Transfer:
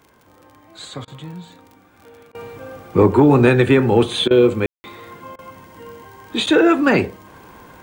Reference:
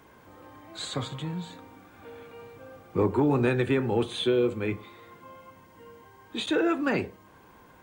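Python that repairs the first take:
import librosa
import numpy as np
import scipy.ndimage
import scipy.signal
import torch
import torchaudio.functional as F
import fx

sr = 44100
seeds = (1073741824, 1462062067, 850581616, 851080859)

y = fx.fix_declick_ar(x, sr, threshold=6.5)
y = fx.fix_ambience(y, sr, seeds[0], print_start_s=0.0, print_end_s=0.5, start_s=4.66, end_s=4.84)
y = fx.fix_interpolate(y, sr, at_s=(1.05, 2.32, 4.28, 5.36), length_ms=26.0)
y = fx.fix_level(y, sr, at_s=2.33, step_db=-11.5)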